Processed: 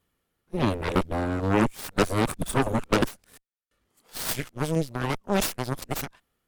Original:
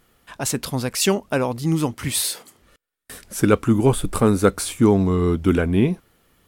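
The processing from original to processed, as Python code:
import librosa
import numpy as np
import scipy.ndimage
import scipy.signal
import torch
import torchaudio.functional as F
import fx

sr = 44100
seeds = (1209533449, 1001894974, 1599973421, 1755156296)

y = x[::-1].copy()
y = fx.cheby_harmonics(y, sr, harmonics=(3, 7, 8), levels_db=(-19, -27, -11), full_scale_db=-3.0)
y = fx.tremolo_shape(y, sr, shape='saw_down', hz=2.1, depth_pct=35)
y = F.gain(torch.from_numpy(y), -6.0).numpy()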